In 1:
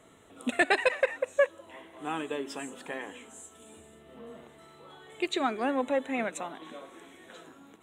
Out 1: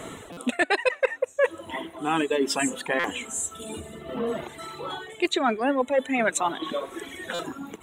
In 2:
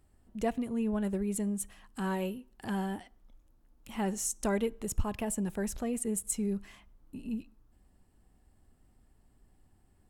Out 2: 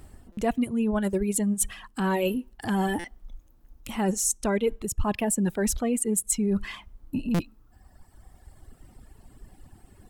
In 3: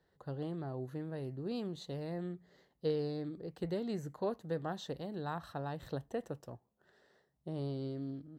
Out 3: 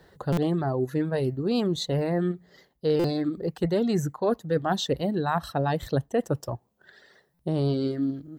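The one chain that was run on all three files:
reverb removal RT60 2 s; reverse; compressor 6:1, threshold -41 dBFS; reverse; stuck buffer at 0.32/2.99/7.34, samples 256, times 8; match loudness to -27 LUFS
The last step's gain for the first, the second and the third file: +20.0, +18.0, +20.0 dB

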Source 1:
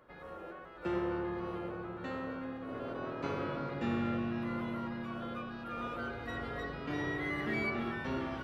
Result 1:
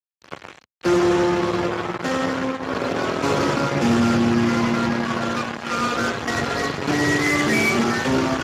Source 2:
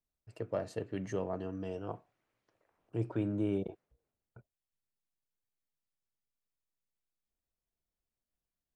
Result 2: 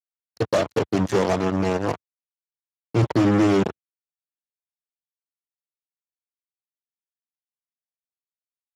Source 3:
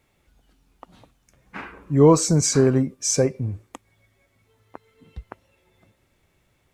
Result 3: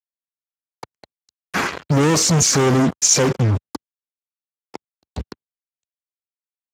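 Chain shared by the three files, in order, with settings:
fuzz box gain 41 dB, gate -41 dBFS; gain -1.5 dB; Speex 15 kbps 32000 Hz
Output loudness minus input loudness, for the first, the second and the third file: +17.0, +15.5, +2.5 LU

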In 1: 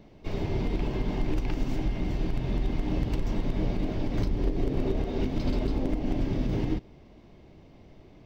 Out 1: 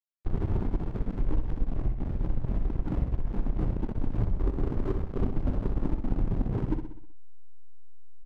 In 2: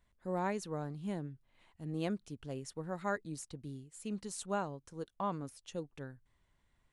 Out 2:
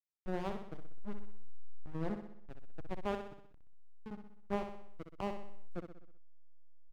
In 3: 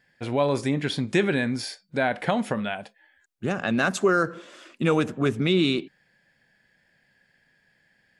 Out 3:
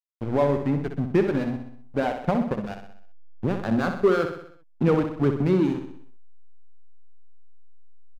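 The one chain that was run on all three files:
reverb removal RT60 1.7 s; Bessel low-pass 980 Hz, order 2; notch 650 Hz, Q 15; in parallel at -2 dB: compressor 6:1, threshold -38 dBFS; on the sum: backlash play -25 dBFS; on a send: feedback echo 63 ms, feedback 53%, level -7.5 dB; on the sum: gain +2.5 dB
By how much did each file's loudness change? -1.5, -3.0, +0.5 LU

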